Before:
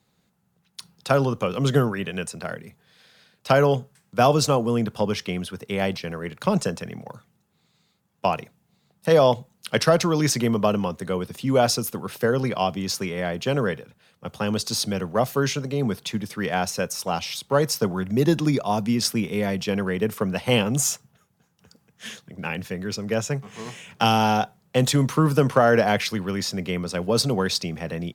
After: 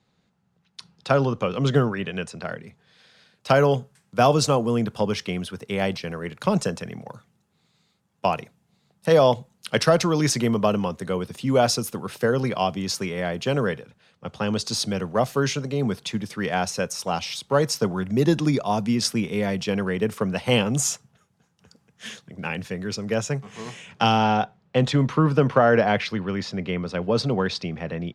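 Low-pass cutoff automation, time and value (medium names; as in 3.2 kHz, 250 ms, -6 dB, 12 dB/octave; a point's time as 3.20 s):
2.49 s 5.5 kHz
3.64 s 11 kHz
13.61 s 11 kHz
14.33 s 5.8 kHz
14.85 s 9.6 kHz
23.70 s 9.6 kHz
24.29 s 3.6 kHz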